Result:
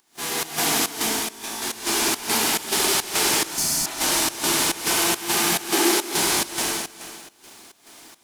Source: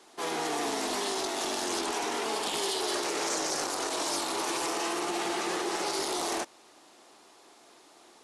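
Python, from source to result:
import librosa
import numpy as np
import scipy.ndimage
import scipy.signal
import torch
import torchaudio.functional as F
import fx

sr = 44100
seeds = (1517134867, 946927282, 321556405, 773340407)

y = fx.envelope_flatten(x, sr, power=0.3)
y = fx.comb_fb(y, sr, f0_hz=55.0, decay_s=0.73, harmonics='all', damping=0.0, mix_pct=100, at=(0.89, 1.62))
y = fx.echo_feedback(y, sr, ms=195, feedback_pct=42, wet_db=-5.0)
y = fx.rev_gated(y, sr, seeds[0], gate_ms=420, shape='flat', drr_db=-5.5)
y = fx.volume_shaper(y, sr, bpm=140, per_beat=1, depth_db=-16, release_ms=149.0, shape='slow start')
y = fx.spec_repair(y, sr, seeds[1], start_s=3.53, length_s=0.4, low_hz=300.0, high_hz=4200.0, source='after')
y = fx.low_shelf_res(y, sr, hz=190.0, db=-13.5, q=3.0, at=(5.73, 6.14))
y = y * librosa.db_to_amplitude(2.5)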